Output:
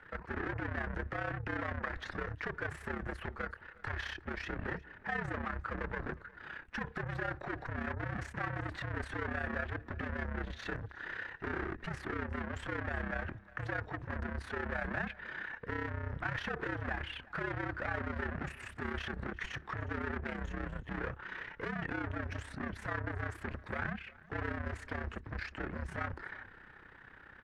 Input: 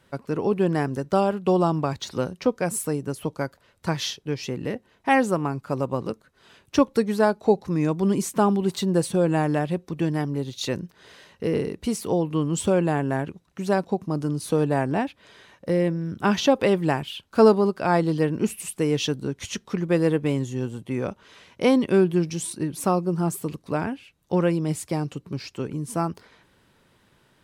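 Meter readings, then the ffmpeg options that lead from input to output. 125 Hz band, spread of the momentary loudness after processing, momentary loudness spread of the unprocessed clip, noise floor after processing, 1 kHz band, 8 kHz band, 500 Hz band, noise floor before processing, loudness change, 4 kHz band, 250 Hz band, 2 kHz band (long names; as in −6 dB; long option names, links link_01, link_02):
−13.5 dB, 5 LU, 10 LU, −57 dBFS, −13.5 dB, −27.5 dB, −20.0 dB, −62 dBFS, −15.0 dB, −16.0 dB, −19.5 dB, −3.0 dB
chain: -af "alimiter=limit=-15dB:level=0:latency=1:release=68,aeval=exprs='(tanh(100*val(0)+0.25)-tanh(0.25))/100':channel_layout=same,afreqshift=-71,crystalizer=i=2:c=0,lowpass=frequency=1700:width_type=q:width=4.5,tremolo=f=32:d=0.71,aecho=1:1:361:0.0841,volume=4dB"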